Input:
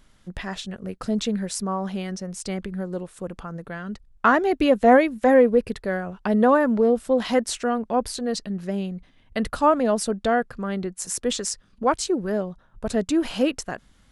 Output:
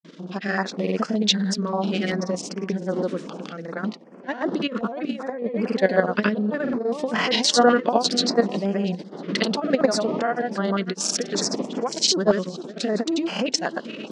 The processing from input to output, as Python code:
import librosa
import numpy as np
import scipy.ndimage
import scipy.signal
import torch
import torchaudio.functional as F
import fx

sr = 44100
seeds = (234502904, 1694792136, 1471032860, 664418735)

p1 = fx.dmg_wind(x, sr, seeds[0], corner_hz=270.0, level_db=-36.0)
p2 = p1 + fx.echo_feedback(p1, sr, ms=480, feedback_pct=40, wet_db=-21, dry=0)
p3 = fx.over_compress(p2, sr, threshold_db=-22.0, ratio=-0.5)
p4 = fx.peak_eq(p3, sr, hz=810.0, db=4.0, octaves=2.7)
p5 = fx.level_steps(p4, sr, step_db=9)
p6 = scipy.signal.sosfilt(scipy.signal.butter(4, 5500.0, 'lowpass', fs=sr, output='sos'), p5)
p7 = fx.granulator(p6, sr, seeds[1], grain_ms=100.0, per_s=20.0, spray_ms=100.0, spread_st=0)
p8 = fx.brickwall_highpass(p7, sr, low_hz=160.0)
p9 = fx.high_shelf(p8, sr, hz=2200.0, db=11.0)
p10 = fx.filter_held_notch(p9, sr, hz=5.2, low_hz=790.0, high_hz=3800.0)
y = p10 * librosa.db_to_amplitude(5.5)